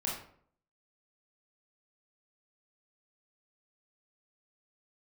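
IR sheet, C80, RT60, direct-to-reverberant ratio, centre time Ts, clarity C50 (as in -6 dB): 8.0 dB, 0.60 s, -4.5 dB, 42 ms, 3.5 dB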